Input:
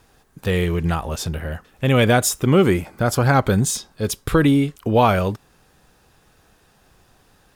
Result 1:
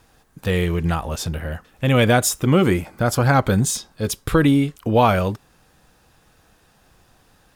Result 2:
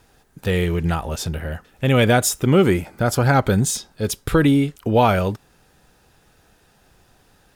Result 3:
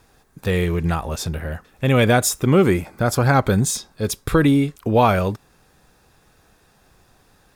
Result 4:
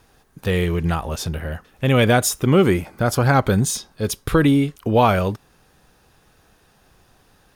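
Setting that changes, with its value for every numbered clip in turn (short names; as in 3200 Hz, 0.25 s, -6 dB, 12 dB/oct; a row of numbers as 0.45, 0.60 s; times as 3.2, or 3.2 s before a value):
notch, frequency: 400, 1100, 3000, 7600 Hz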